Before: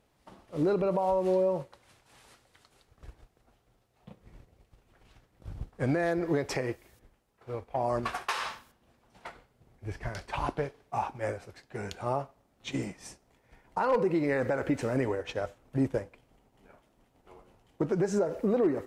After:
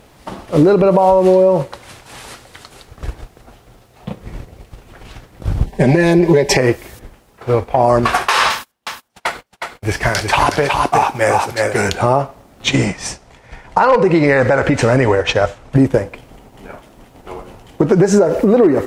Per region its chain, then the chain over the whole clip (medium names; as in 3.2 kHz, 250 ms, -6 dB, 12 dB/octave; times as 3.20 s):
5.66–6.57 s: Butterworth band-stop 1.3 kHz, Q 2 + comb 5.1 ms, depth 98% + loudspeaker Doppler distortion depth 0.1 ms
8.50–11.89 s: gate -56 dBFS, range -29 dB + tilt EQ +2 dB/octave + delay 365 ms -6 dB
12.69–15.76 s: low-pass 8 kHz + peaking EQ 300 Hz -6 dB 1.4 oct
whole clip: compression 6:1, threshold -31 dBFS; loudness maximiser +24.5 dB; trim -1 dB